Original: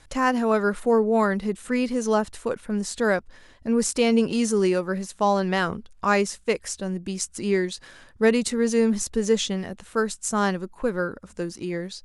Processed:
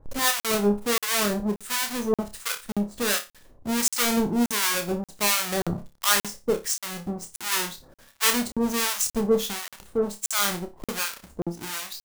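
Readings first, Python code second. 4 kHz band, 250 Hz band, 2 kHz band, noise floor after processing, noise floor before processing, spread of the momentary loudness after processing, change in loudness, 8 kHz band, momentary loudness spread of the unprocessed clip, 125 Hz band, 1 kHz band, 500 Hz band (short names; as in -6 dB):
+6.5 dB, -4.0 dB, +0.5 dB, under -85 dBFS, -53 dBFS, 11 LU, -1.0 dB, +5.5 dB, 9 LU, -3.0 dB, -3.5 dB, -5.5 dB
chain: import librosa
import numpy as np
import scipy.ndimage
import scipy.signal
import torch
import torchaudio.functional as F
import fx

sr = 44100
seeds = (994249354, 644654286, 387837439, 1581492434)

p1 = fx.halfwave_hold(x, sr)
p2 = fx.high_shelf(p1, sr, hz=4500.0, db=9.0)
p3 = fx.harmonic_tremolo(p2, sr, hz=1.4, depth_pct=100, crossover_hz=890.0)
p4 = p3 + fx.room_flutter(p3, sr, wall_m=5.0, rt60_s=0.24, dry=0)
p5 = fx.buffer_crackle(p4, sr, first_s=0.4, period_s=0.58, block=2048, kind='zero')
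y = p5 * librosa.db_to_amplitude(-3.5)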